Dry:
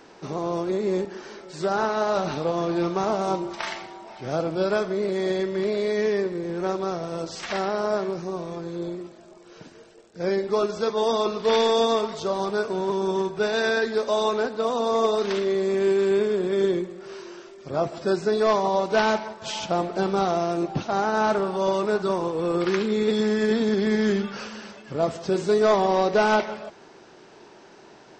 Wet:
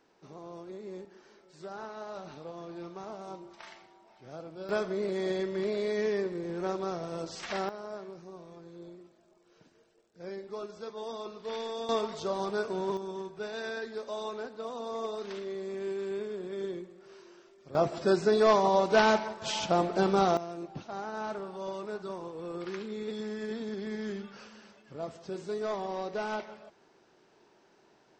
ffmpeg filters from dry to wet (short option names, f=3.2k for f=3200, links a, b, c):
-af "asetnsamples=n=441:p=0,asendcmd='4.69 volume volume -6.5dB;7.69 volume volume -16.5dB;11.89 volume volume -6.5dB;12.97 volume volume -14dB;17.75 volume volume -2dB;20.37 volume volume -14.5dB',volume=-18dB"